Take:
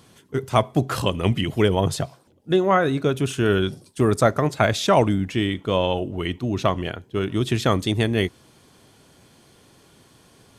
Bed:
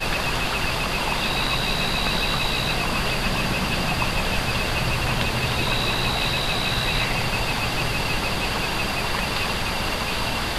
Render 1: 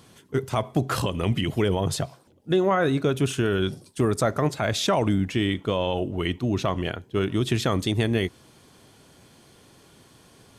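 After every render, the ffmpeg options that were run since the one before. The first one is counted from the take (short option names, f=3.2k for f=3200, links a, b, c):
-af "alimiter=limit=-12.5dB:level=0:latency=1:release=76"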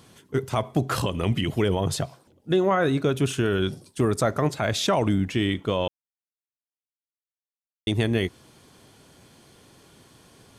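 -filter_complex "[0:a]asplit=3[a][b][c];[a]atrim=end=5.88,asetpts=PTS-STARTPTS,afade=t=out:st=5.876:d=0.004:c=hsin[d];[b]atrim=start=5.88:end=7.87,asetpts=PTS-STARTPTS,volume=0[e];[c]atrim=start=7.87,asetpts=PTS-STARTPTS,afade=t=in:d=0.004:c=hsin[f];[d][e][f]concat=n=3:v=0:a=1"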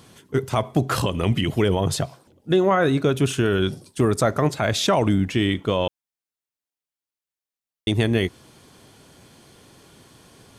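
-af "volume=3dB"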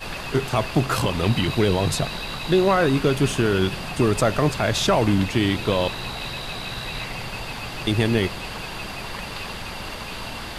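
-filter_complex "[1:a]volume=-8dB[a];[0:a][a]amix=inputs=2:normalize=0"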